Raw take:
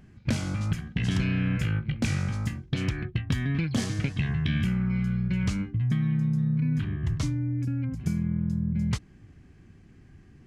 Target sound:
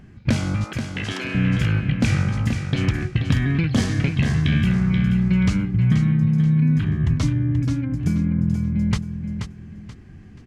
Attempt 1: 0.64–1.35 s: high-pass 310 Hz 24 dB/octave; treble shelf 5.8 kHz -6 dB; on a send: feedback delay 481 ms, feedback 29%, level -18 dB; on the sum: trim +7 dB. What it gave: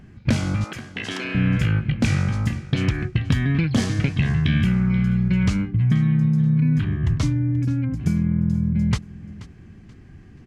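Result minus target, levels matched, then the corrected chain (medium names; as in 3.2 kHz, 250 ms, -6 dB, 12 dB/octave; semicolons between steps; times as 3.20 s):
echo-to-direct -10.5 dB
0.64–1.35 s: high-pass 310 Hz 24 dB/octave; treble shelf 5.8 kHz -6 dB; on a send: feedback delay 481 ms, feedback 29%, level -7.5 dB; on the sum: trim +7 dB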